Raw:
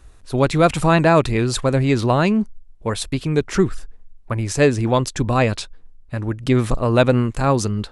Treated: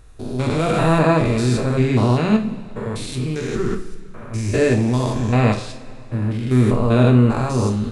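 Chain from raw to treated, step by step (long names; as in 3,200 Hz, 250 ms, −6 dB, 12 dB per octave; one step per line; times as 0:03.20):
spectrum averaged block by block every 200 ms
coupled-rooms reverb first 0.42 s, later 3 s, from −19 dB, DRR 2 dB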